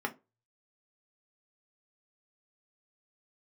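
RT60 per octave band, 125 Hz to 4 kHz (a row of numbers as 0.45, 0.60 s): 0.60, 0.25, 0.30, 0.25, 0.20, 0.15 s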